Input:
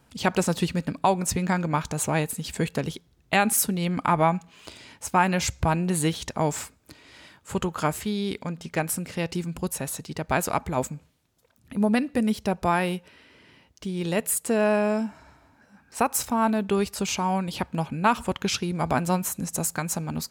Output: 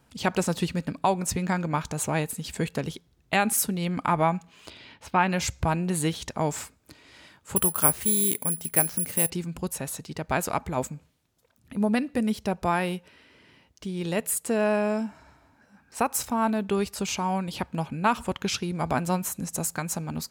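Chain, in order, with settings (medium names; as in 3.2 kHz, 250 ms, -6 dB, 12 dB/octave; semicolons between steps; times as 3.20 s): 4.70–5.30 s: resonant high shelf 5.4 kHz -12.5 dB, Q 1.5; 7.56–9.30 s: careless resampling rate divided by 4×, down filtered, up zero stuff; trim -2 dB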